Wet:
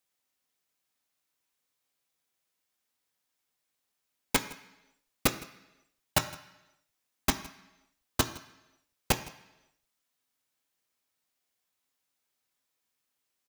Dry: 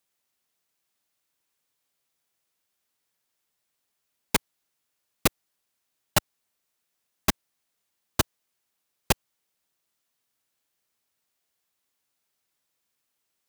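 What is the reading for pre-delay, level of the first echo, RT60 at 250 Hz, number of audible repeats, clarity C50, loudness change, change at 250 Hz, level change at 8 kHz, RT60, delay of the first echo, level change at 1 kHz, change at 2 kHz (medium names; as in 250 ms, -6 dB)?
3 ms, -21.5 dB, 0.90 s, 1, 12.5 dB, -3.5 dB, -2.5 dB, -3.0 dB, 0.95 s, 162 ms, -2.5 dB, -2.5 dB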